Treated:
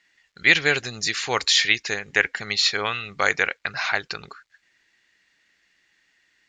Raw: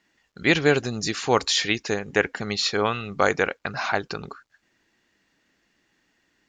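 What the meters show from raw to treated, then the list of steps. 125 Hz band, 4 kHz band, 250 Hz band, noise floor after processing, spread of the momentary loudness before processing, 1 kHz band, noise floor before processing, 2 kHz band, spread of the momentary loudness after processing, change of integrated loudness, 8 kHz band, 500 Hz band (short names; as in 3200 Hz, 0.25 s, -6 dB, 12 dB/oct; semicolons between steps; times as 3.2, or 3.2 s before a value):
-6.5 dB, +4.5 dB, -9.0 dB, -67 dBFS, 8 LU, -2.5 dB, -70 dBFS, +5.0 dB, 9 LU, +2.5 dB, +2.5 dB, -6.0 dB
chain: graphic EQ 250/2000/4000/8000 Hz -5/+11/+7/+7 dB; gain -5.5 dB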